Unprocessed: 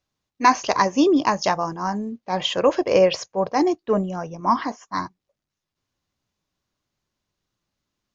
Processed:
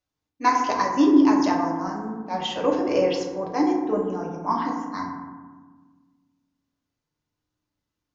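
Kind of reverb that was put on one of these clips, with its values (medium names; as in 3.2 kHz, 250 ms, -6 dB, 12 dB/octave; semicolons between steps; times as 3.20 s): FDN reverb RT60 1.4 s, low-frequency decay 1.5×, high-frequency decay 0.35×, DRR -1.5 dB; trim -8 dB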